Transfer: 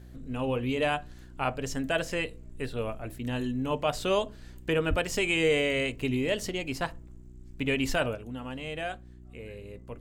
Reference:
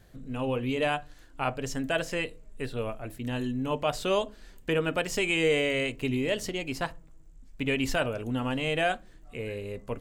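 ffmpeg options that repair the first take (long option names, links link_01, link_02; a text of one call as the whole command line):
ffmpeg -i in.wav -filter_complex "[0:a]bandreject=frequency=61.4:width_type=h:width=4,bandreject=frequency=122.8:width_type=h:width=4,bandreject=frequency=184.2:width_type=h:width=4,bandreject=frequency=245.6:width_type=h:width=4,bandreject=frequency=307:width_type=h:width=4,bandreject=frequency=368.4:width_type=h:width=4,asplit=3[link_01][link_02][link_03];[link_01]afade=type=out:start_time=4.89:duration=0.02[link_04];[link_02]highpass=frequency=140:width=0.5412,highpass=frequency=140:width=1.3066,afade=type=in:start_time=4.89:duration=0.02,afade=type=out:start_time=5.01:duration=0.02[link_05];[link_03]afade=type=in:start_time=5.01:duration=0.02[link_06];[link_04][link_05][link_06]amix=inputs=3:normalize=0,asetnsamples=nb_out_samples=441:pad=0,asendcmd='8.15 volume volume 8dB',volume=0dB" out.wav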